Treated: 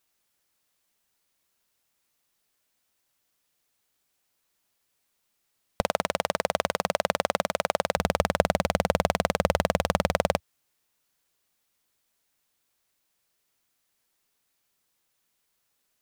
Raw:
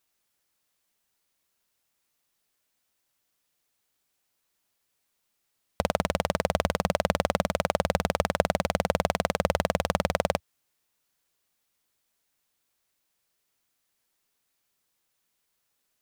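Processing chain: 5.81–7.97 HPF 430 Hz 6 dB/oct; gain +1.5 dB

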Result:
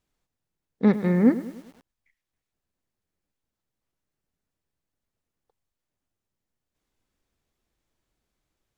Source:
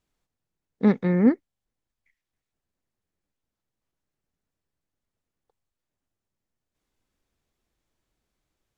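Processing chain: lo-fi delay 0.102 s, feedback 55%, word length 7-bit, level -14 dB

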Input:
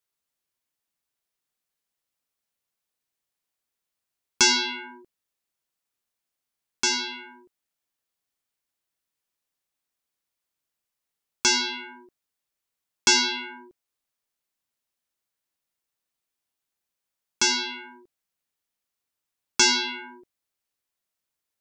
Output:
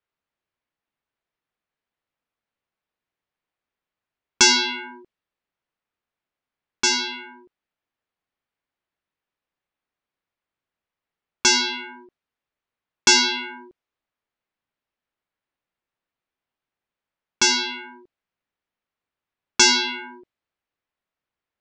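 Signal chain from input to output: low-pass opened by the level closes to 2500 Hz, open at -23.5 dBFS; gain +4 dB

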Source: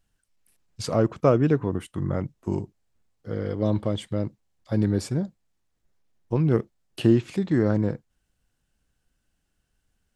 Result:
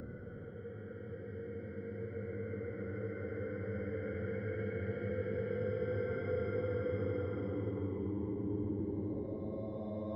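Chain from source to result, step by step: per-bin expansion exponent 1.5; Chebyshev low-pass 2200 Hz, order 2; low shelf 170 Hz -8.5 dB; auto swell 0.291 s; Paulstretch 30×, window 0.10 s, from 3.3; three-band squash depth 40%; gain +6 dB

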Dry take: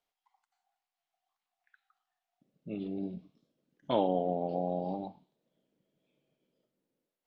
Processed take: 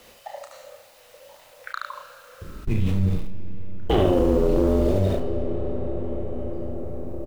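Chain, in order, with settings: HPF 75 Hz 24 dB/oct; low shelf 95 Hz +10.5 dB; notch 3500 Hz, Q 27; frequency shift -200 Hz; sample leveller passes 2; in parallel at -9.5 dB: bit-crush 7-bit; on the sum: doubler 32 ms -7 dB; echo 73 ms -5.5 dB; on a send at -18 dB: reverb RT60 5.4 s, pre-delay 85 ms; on the sum: fast leveller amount 70%

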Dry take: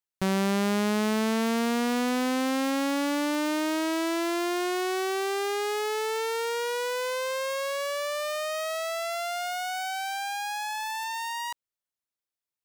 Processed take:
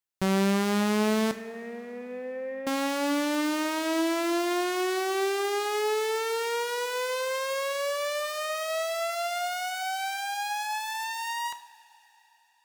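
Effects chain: 1.31–2.67 vocal tract filter e; two-slope reverb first 0.54 s, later 4.3 s, from -18 dB, DRR 9 dB

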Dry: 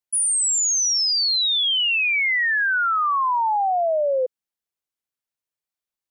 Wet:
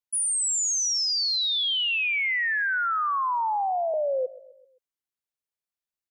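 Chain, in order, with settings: 1.68–3.94 HPF 530 Hz 24 dB/oct; feedback echo 0.13 s, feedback 51%, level -19 dB; gain -5 dB

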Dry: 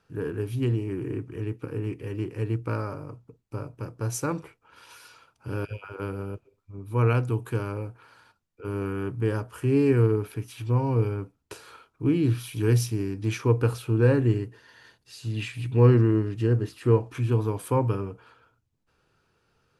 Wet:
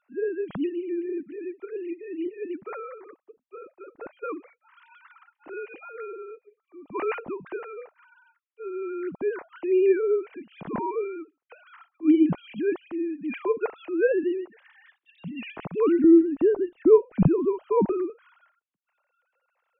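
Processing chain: sine-wave speech; 16.04–18.1 tilt -4.5 dB/oct; gain -2.5 dB

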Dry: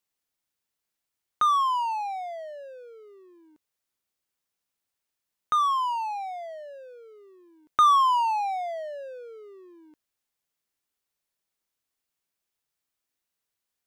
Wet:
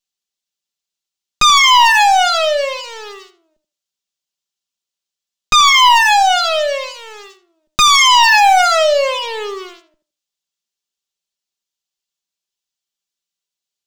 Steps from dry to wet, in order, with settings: minimum comb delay 5.1 ms; sample leveller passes 5; band shelf 4600 Hz +10 dB; on a send: tape echo 81 ms, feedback 23%, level -10.5 dB, low-pass 2500 Hz; on the sum: maximiser +7 dB; gain -1 dB

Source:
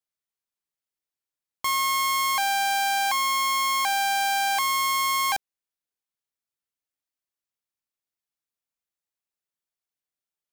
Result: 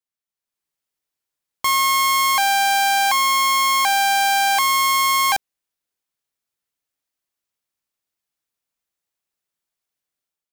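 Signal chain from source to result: AGC gain up to 9 dB; gain -2.5 dB

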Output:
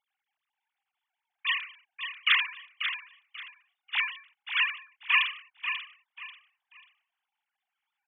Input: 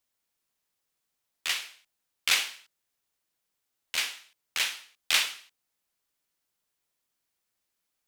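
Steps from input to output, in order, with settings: sine-wave speech; feedback echo 0.539 s, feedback 27%, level -8.5 dB; gain +1.5 dB

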